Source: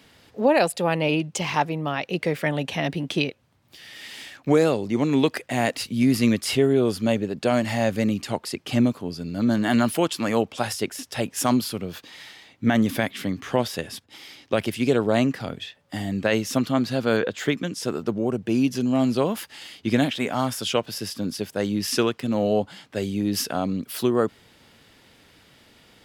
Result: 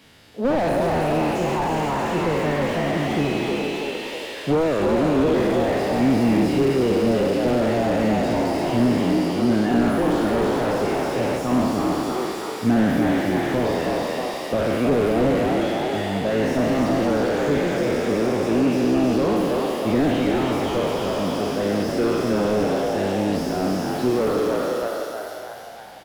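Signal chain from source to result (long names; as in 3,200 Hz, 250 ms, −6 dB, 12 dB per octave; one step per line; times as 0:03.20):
peak hold with a decay on every bin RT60 1.89 s
echo with shifted repeats 318 ms, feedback 55%, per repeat +65 Hz, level −4 dB
slew-rate limiting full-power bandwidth 73 Hz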